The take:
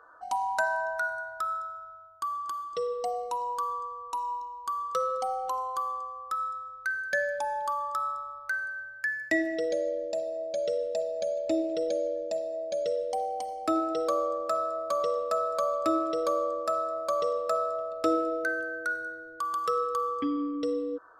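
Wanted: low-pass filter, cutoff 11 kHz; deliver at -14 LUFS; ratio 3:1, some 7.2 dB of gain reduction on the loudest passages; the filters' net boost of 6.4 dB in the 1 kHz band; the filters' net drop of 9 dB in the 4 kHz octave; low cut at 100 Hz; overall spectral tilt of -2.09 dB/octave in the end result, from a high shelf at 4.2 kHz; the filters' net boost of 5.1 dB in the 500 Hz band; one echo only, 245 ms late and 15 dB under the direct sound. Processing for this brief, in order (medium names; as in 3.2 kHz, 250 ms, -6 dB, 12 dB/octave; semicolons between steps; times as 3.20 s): high-pass 100 Hz; low-pass 11 kHz; peaking EQ 500 Hz +3.5 dB; peaking EQ 1 kHz +8.5 dB; peaking EQ 4 kHz -7 dB; treble shelf 4.2 kHz -8 dB; compression 3:1, threshold -28 dBFS; delay 245 ms -15 dB; trim +16 dB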